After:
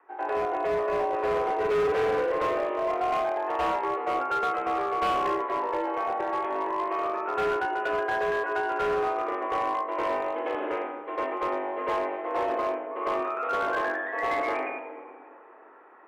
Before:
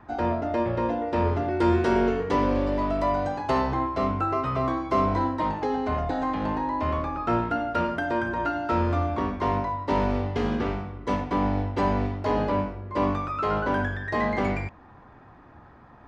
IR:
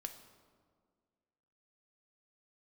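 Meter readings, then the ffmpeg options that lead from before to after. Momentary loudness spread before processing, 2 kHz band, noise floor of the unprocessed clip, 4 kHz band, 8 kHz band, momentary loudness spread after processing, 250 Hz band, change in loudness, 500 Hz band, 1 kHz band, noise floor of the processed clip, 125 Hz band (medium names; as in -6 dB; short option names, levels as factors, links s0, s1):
4 LU, +1.0 dB, -50 dBFS, -1.0 dB, no reading, 5 LU, -11.0 dB, -2.0 dB, +0.5 dB, 0.0 dB, -50 dBFS, -22.0 dB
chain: -filter_complex "[0:a]asplit=2[s0][s1];[1:a]atrim=start_sample=2205,asetrate=32634,aresample=44100,adelay=100[s2];[s1][s2]afir=irnorm=-1:irlink=0,volume=2.82[s3];[s0][s3]amix=inputs=2:normalize=0,highpass=f=300:t=q:w=0.5412,highpass=f=300:t=q:w=1.307,lowpass=f=2700:t=q:w=0.5176,lowpass=f=2700:t=q:w=0.7071,lowpass=f=2700:t=q:w=1.932,afreqshift=69,volume=5.01,asoftclip=hard,volume=0.2,volume=0.398"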